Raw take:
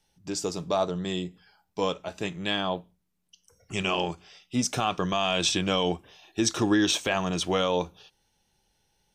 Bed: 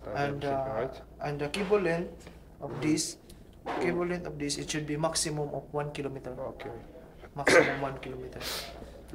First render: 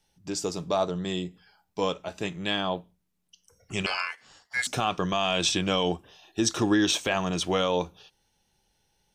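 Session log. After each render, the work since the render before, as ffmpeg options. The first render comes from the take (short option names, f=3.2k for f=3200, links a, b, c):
-filter_complex "[0:a]asettb=1/sr,asplit=3[a][b][c];[a]atrim=end=3.864[d];[b]atrim=start=3.86:end=4.67,asetpts=PTS-STARTPTS,afade=t=in:d=0.004:c=qsin,afade=t=out:st=0.806:d=0.004:c=qsin,aeval=exprs='val(0)*sin(2*PI*1900*n/s)':c=same[e];[c]atrim=start=4.666[f];[d][e]acrossfade=d=0.004:c1=hsin:c2=qsin[g];[g][f]acrossfade=d=0.004:c1=qsin:c2=hsin,asettb=1/sr,asplit=3[h][i][j];[h]atrim=end=5.884[k];[i]atrim=start=5.88:end=6.52,asetpts=PTS-STARTPTS,afade=t=in:d=0.004:c=qsin,afade=t=out:st=0.636:d=0.004:c=qsin,equalizer=f=2.2k:w=7.6:g=-10[l];[j]atrim=start=6.516[m];[k][l]acrossfade=d=0.004:c1=hsin:c2=qsin[n];[n][m]acrossfade=d=0.004:c1=qsin:c2=hsin"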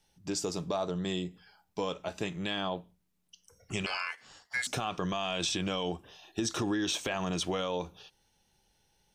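-af "alimiter=limit=-17.5dB:level=0:latency=1:release=40,acompressor=threshold=-31dB:ratio=2"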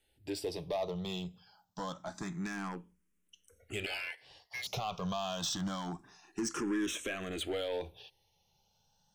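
-filter_complex "[0:a]volume=28.5dB,asoftclip=hard,volume=-28.5dB,asplit=2[a][b];[b]afreqshift=0.27[c];[a][c]amix=inputs=2:normalize=1"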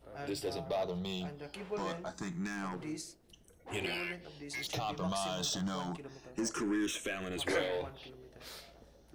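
-filter_complex "[1:a]volume=-13.5dB[a];[0:a][a]amix=inputs=2:normalize=0"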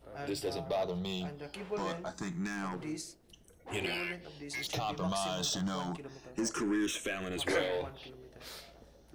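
-af "volume=1.5dB"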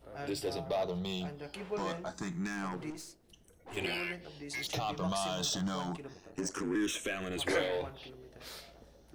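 -filter_complex "[0:a]asettb=1/sr,asplit=3[a][b][c];[a]atrim=end=2.904[d];[b]atrim=start=2.9:end=3.77,asetpts=PTS-STARTPTS,afade=t=in:d=0.004:c=qsin,afade=t=out:st=0.866:d=0.004:c=qsin,aeval=exprs='(tanh(126*val(0)+0.45)-tanh(0.45))/126':c=same[e];[c]atrim=start=3.766[f];[d][e]acrossfade=d=0.004:c1=hsin:c2=qsin[g];[g][f]acrossfade=d=0.004:c1=qsin:c2=hsin,asettb=1/sr,asplit=3[h][i][j];[h]atrim=end=6.134[k];[i]atrim=start=6.13:end=6.75,asetpts=PTS-STARTPTS,afade=t=in:d=0.004:c=qsin,afade=t=out:st=0.616:d=0.004:c=qsin,aeval=exprs='val(0)*sin(2*PI*47*n/s)':c=same[l];[j]atrim=start=6.746[m];[k][l]acrossfade=d=0.004:c1=hsin:c2=qsin[n];[n][m]acrossfade=d=0.004:c1=qsin:c2=hsin"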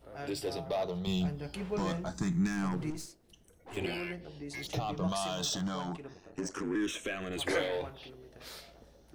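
-filter_complex "[0:a]asettb=1/sr,asplit=3[a][b][c];[a]atrim=end=1.074[d];[b]atrim=start=1.07:end=3.06,asetpts=PTS-STARTPTS,afade=t=in:d=0.004:c=qsin,afade=t=out:st=1.986:d=0.004:c=qsin,bass=f=250:g=11,treble=f=4k:g=3[e];[c]atrim=start=3.056[f];[d][e]acrossfade=d=0.004:c1=hsin:c2=qsin[g];[g][f]acrossfade=d=0.004:c1=qsin:c2=hsin,asettb=1/sr,asplit=3[h][i][j];[h]atrim=end=3.774[k];[i]atrim=start=3.77:end=5.08,asetpts=PTS-STARTPTS,afade=t=in:d=0.004:c=qsin,afade=t=out:st=1.306:d=0.004:c=qsin,tiltshelf=f=660:g=4.5[l];[j]atrim=start=5.076[m];[k][l]acrossfade=d=0.004:c1=hsin:c2=qsin[n];[n][m]acrossfade=d=0.004:c1=qsin:c2=hsin,asettb=1/sr,asplit=3[o][p][q];[o]atrim=end=5.674[r];[p]atrim=start=5.67:end=7.33,asetpts=PTS-STARTPTS,afade=t=in:d=0.004:c=qsin,afade=t=out:st=1.656:d=0.004:c=qsin,highshelf=f=6.3k:g=-7.5[s];[q]atrim=start=7.326[t];[r][s]acrossfade=d=0.004:c1=hsin:c2=qsin[u];[u][t]acrossfade=d=0.004:c1=qsin:c2=hsin"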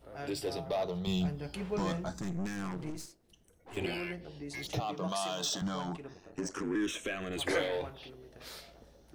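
-filter_complex "[0:a]asettb=1/sr,asplit=3[a][b][c];[a]atrim=end=2.184[d];[b]atrim=start=2.18:end=3.77,asetpts=PTS-STARTPTS,afade=t=in:d=0.004:c=qsin,afade=t=out:st=1.586:d=0.004:c=qsin,aeval=exprs='(tanh(44.7*val(0)+0.65)-tanh(0.65))/44.7':c=same[e];[c]atrim=start=3.766[f];[d][e]acrossfade=d=0.004:c1=hsin:c2=qsin[g];[g][f]acrossfade=d=0.004:c1=qsin:c2=hsin,asettb=1/sr,asplit=3[h][i][j];[h]atrim=end=4.804[k];[i]atrim=start=4.8:end=5.62,asetpts=PTS-STARTPTS,afade=t=in:d=0.004:c=qsin,afade=t=out:st=0.816:d=0.004:c=qsin,highpass=220[l];[j]atrim=start=5.616[m];[k][l]acrossfade=d=0.004:c1=hsin:c2=qsin[n];[n][m]acrossfade=d=0.004:c1=qsin:c2=hsin"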